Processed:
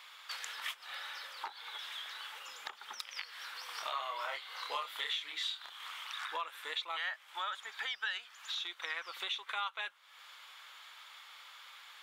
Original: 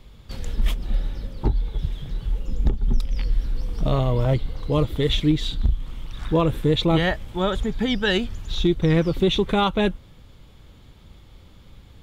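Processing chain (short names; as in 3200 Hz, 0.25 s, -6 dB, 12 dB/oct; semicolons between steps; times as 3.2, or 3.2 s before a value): HPF 1200 Hz 24 dB/oct; high shelf 2100 Hz -10.5 dB; compressor 4:1, threshold -53 dBFS, peak gain reduction 22 dB; 3.66–5.88 doubler 28 ms -3 dB; gain +13.5 dB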